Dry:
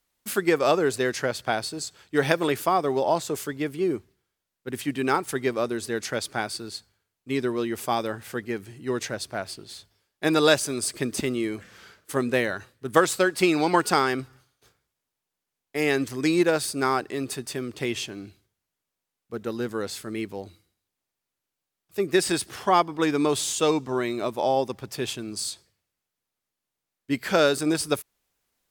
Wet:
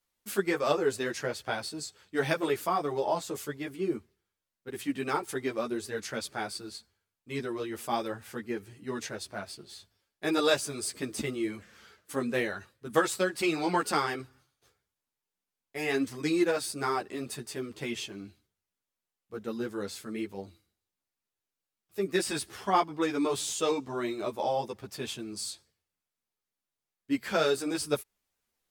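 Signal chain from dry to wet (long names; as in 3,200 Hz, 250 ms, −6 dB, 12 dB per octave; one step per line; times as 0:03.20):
string-ensemble chorus
level −3 dB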